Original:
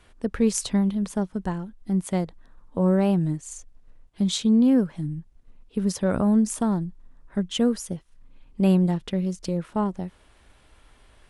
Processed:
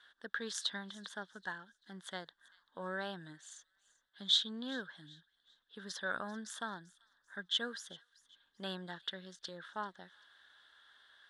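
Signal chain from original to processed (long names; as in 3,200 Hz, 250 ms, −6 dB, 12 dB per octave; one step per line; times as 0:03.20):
pair of resonant band-passes 2,400 Hz, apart 1.1 octaves
delay with a high-pass on its return 389 ms, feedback 33%, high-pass 2,600 Hz, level −19.5 dB
level +5.5 dB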